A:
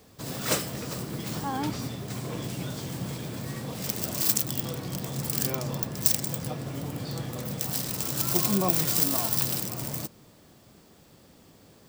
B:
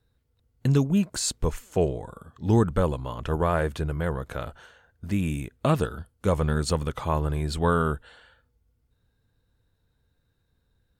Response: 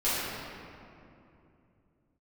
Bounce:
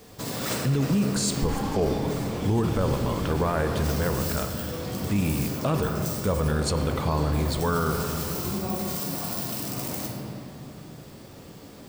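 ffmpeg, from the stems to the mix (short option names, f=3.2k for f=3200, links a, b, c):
-filter_complex "[0:a]acompressor=threshold=-35dB:ratio=5,volume=2dB,asplit=2[a][b];[b]volume=-6.5dB[c];[1:a]volume=1dB,asplit=3[d][e][f];[e]volume=-19dB[g];[f]apad=whole_len=524070[h];[a][h]sidechaincompress=threshold=-36dB:ratio=8:attack=16:release=1390[i];[2:a]atrim=start_sample=2205[j];[c][g]amix=inputs=2:normalize=0[k];[k][j]afir=irnorm=-1:irlink=0[l];[i][d][l]amix=inputs=3:normalize=0,alimiter=limit=-15.5dB:level=0:latency=1:release=16"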